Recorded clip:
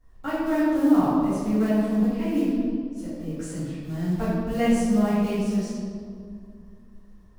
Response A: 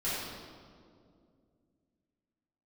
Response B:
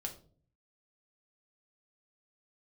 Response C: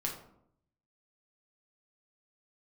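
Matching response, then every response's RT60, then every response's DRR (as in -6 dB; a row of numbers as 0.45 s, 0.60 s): A; 2.3 s, 0.45 s, 0.70 s; -12.0 dB, 1.5 dB, -1.5 dB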